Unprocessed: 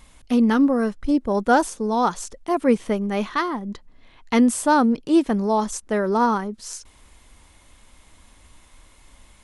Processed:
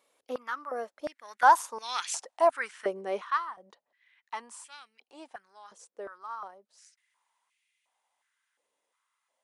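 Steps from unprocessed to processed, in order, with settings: Doppler pass-by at 2.03 s, 16 m/s, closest 4.4 m; step-sequenced high-pass 2.8 Hz 480–2400 Hz

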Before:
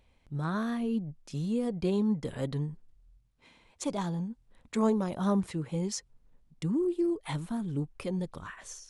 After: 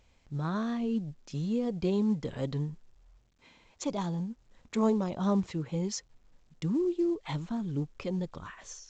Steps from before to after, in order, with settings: dynamic bell 1.6 kHz, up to -4 dB, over -51 dBFS, Q 2.4; A-law 128 kbps 16 kHz

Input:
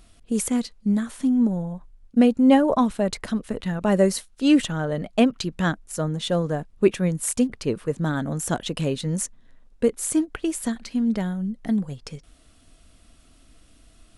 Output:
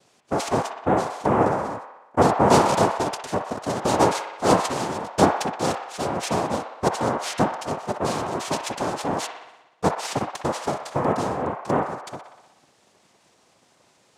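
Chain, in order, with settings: LFO notch saw down 4.8 Hz 250–2700 Hz; noise-vocoded speech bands 2; feedback echo behind a band-pass 61 ms, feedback 66%, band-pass 1.4 kHz, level -5 dB

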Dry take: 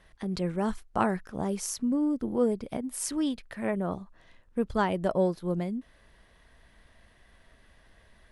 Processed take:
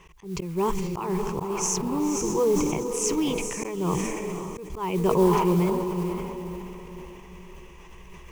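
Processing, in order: rippled EQ curve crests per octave 0.74, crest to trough 17 dB; in parallel at +1 dB: compression, threshold -37 dBFS, peak gain reduction 18 dB; on the sum: echo that smears into a reverb 533 ms, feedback 43%, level -7.5 dB; modulation noise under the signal 24 dB; slow attack 246 ms; decay stretcher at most 30 dB/s

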